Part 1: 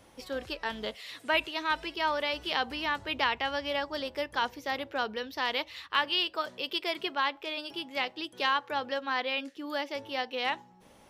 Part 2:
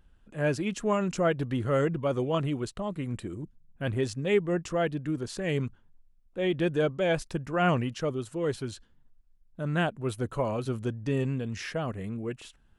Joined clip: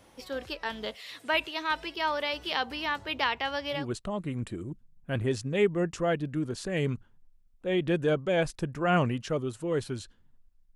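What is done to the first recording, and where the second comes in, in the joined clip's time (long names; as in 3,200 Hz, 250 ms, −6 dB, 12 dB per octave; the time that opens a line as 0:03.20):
part 1
0:03.80: continue with part 2 from 0:02.52, crossfade 0.18 s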